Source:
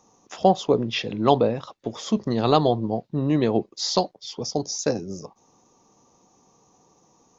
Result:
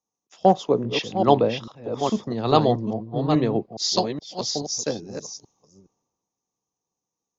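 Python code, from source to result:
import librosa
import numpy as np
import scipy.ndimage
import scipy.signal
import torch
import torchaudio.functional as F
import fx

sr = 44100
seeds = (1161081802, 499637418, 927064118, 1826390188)

y = fx.reverse_delay(x, sr, ms=419, wet_db=-4.5)
y = fx.band_widen(y, sr, depth_pct=70)
y = F.gain(torch.from_numpy(y), -2.5).numpy()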